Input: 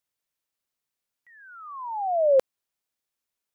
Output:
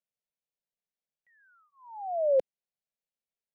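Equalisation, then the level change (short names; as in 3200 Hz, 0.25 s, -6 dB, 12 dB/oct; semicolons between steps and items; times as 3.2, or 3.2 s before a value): LPF 1700 Hz 6 dB/oct; fixed phaser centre 310 Hz, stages 6; -4.5 dB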